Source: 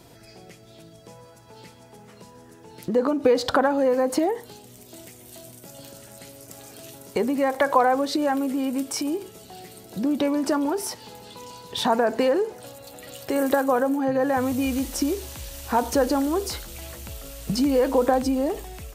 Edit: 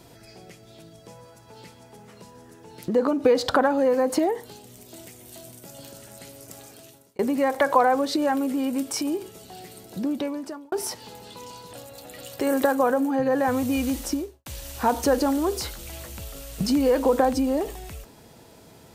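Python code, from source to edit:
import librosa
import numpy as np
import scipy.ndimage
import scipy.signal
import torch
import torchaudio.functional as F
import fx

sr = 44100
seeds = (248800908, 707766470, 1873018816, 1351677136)

y = fx.studio_fade_out(x, sr, start_s=14.88, length_s=0.47)
y = fx.edit(y, sr, fx.fade_out_span(start_s=6.54, length_s=0.65),
    fx.fade_out_span(start_s=9.83, length_s=0.89),
    fx.cut(start_s=11.73, length_s=0.89), tone=tone)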